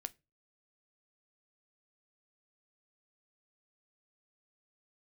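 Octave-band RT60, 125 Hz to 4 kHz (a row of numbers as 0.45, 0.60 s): 0.45, 0.35, 0.30, 0.20, 0.25, 0.20 s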